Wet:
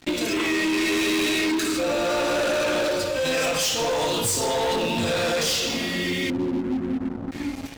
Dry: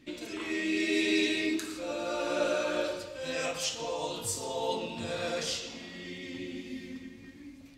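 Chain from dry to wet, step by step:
0:06.30–0:07.32: inverse Chebyshev low-pass filter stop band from 1,100 Hz, stop band 40 dB
leveller curve on the samples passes 5
downward compressor, threshold −23 dBFS, peak gain reduction 5 dB
level +1 dB

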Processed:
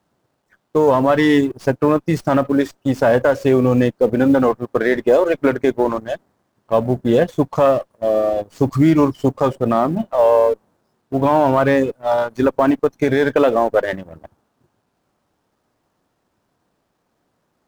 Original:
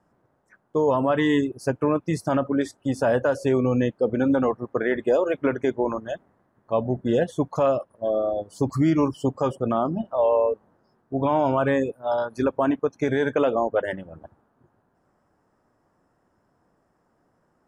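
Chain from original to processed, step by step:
mu-law and A-law mismatch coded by A
windowed peak hold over 3 samples
level +7.5 dB

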